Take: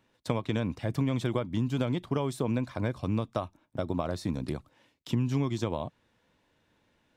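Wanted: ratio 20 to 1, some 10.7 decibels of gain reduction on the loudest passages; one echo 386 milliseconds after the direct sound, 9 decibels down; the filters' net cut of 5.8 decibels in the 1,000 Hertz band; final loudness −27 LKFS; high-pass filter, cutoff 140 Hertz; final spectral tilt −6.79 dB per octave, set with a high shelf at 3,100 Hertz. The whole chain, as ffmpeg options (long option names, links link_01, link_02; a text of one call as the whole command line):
ffmpeg -i in.wav -af "highpass=140,equalizer=frequency=1000:width_type=o:gain=-6.5,highshelf=frequency=3100:gain=-7.5,acompressor=threshold=-36dB:ratio=20,aecho=1:1:386:0.355,volume=15.5dB" out.wav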